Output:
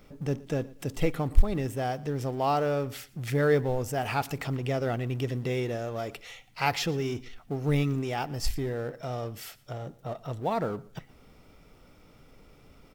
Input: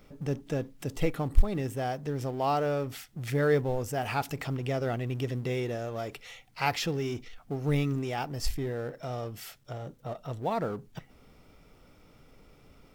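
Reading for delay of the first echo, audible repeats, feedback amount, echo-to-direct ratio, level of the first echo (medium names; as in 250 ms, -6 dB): 118 ms, 2, 26%, -21.5 dB, -22.0 dB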